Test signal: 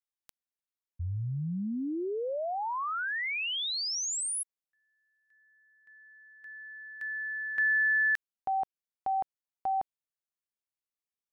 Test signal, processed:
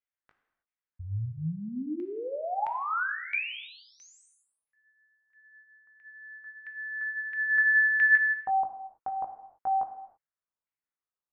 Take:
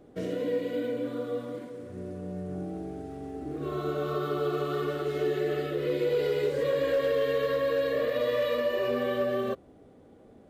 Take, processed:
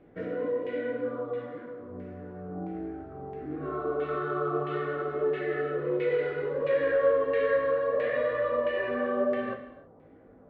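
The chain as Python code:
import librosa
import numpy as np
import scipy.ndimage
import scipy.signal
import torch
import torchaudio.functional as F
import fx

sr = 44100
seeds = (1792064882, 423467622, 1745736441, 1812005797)

y = fx.chorus_voices(x, sr, voices=2, hz=0.76, base_ms=19, depth_ms=1.3, mix_pct=35)
y = fx.filter_lfo_lowpass(y, sr, shape='saw_down', hz=1.5, low_hz=970.0, high_hz=2300.0, q=2.4)
y = fx.rev_gated(y, sr, seeds[0], gate_ms=350, shape='falling', drr_db=6.0)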